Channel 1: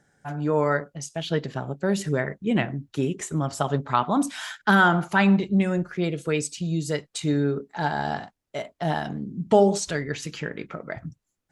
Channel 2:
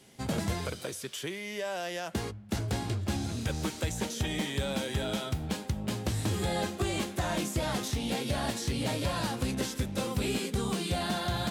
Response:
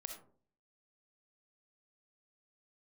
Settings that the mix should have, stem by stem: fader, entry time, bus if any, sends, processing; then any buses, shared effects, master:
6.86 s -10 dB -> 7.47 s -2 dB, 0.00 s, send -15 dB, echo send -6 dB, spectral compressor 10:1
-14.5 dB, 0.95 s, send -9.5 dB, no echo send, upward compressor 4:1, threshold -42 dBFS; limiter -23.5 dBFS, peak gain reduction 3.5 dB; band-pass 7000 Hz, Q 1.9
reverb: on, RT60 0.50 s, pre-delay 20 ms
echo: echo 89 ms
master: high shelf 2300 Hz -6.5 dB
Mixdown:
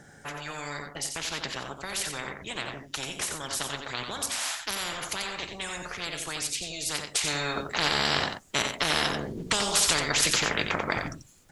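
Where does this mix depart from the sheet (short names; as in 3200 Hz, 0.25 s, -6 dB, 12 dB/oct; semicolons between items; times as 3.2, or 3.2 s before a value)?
stem 2 -14.5 dB -> -22.0 dB; master: missing high shelf 2300 Hz -6.5 dB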